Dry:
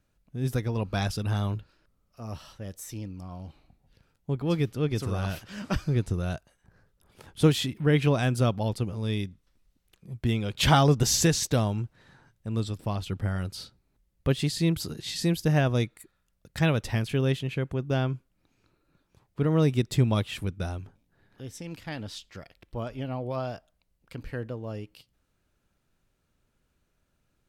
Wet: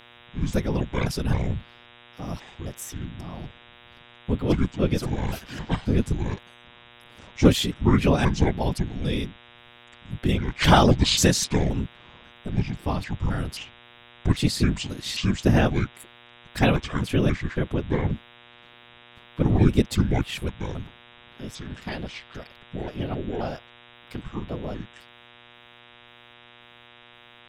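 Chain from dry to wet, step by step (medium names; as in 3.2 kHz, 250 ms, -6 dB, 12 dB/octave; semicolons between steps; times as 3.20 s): pitch shift switched off and on -8 st, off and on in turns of 266 ms; whisper effect; mains buzz 120 Hz, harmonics 32, -55 dBFS 0 dB/octave; trim +4 dB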